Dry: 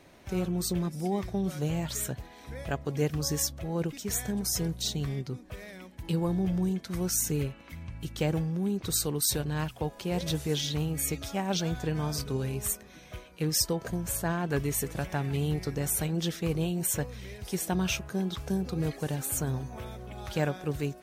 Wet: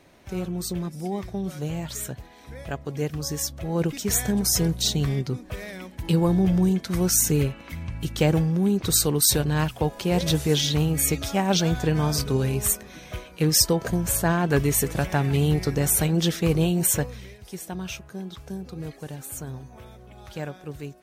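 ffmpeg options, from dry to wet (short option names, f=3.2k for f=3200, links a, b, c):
-af "volume=8dB,afade=t=in:st=3.41:d=0.55:silence=0.421697,afade=t=out:st=16.87:d=0.51:silence=0.237137"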